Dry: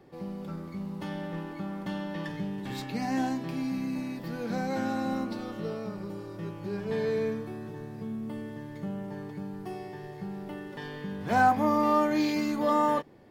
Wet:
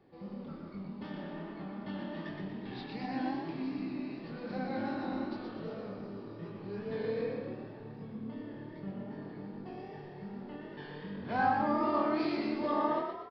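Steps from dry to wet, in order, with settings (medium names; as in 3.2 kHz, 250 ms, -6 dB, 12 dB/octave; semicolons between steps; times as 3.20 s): resampled via 11.025 kHz; chorus 2.6 Hz, delay 19.5 ms, depth 7.8 ms; frequency-shifting echo 119 ms, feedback 46%, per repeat +38 Hz, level -5 dB; trim -4.5 dB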